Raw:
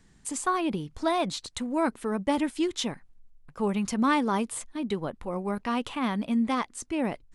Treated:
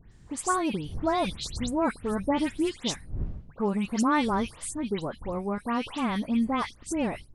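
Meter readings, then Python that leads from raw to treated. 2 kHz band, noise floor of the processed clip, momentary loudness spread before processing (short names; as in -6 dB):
0.0 dB, -52 dBFS, 8 LU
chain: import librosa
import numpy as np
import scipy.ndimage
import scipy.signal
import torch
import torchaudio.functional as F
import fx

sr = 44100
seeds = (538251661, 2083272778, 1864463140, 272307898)

y = fx.dmg_wind(x, sr, seeds[0], corner_hz=89.0, level_db=-42.0)
y = fx.dispersion(y, sr, late='highs', ms=129.0, hz=3000.0)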